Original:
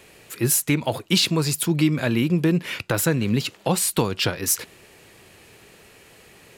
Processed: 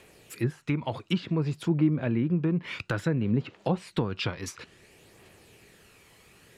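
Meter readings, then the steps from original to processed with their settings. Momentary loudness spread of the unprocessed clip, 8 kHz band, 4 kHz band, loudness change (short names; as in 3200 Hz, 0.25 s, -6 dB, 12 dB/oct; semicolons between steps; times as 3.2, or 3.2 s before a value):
5 LU, -23.5 dB, -14.5 dB, -7.0 dB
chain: phaser 0.57 Hz, delay 1 ms, feedback 33%; treble ducked by the level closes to 1400 Hz, closed at -15 dBFS; gain -7 dB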